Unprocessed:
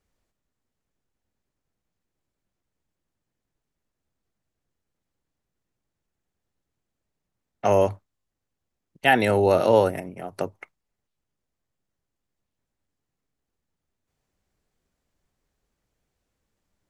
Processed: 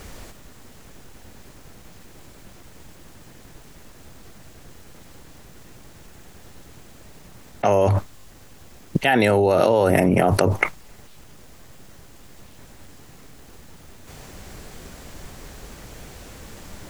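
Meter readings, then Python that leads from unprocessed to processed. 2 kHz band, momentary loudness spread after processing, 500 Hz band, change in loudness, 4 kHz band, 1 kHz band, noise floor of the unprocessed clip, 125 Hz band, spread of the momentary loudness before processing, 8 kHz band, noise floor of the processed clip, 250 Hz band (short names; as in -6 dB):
+3.0 dB, 8 LU, +2.5 dB, +2.0 dB, +3.0 dB, +2.5 dB, -83 dBFS, +9.0 dB, 15 LU, +9.0 dB, -46 dBFS, +6.5 dB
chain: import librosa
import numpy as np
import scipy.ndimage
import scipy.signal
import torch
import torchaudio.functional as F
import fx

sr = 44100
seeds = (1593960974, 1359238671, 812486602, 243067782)

y = fx.env_flatten(x, sr, amount_pct=100)
y = F.gain(torch.from_numpy(y), -2.5).numpy()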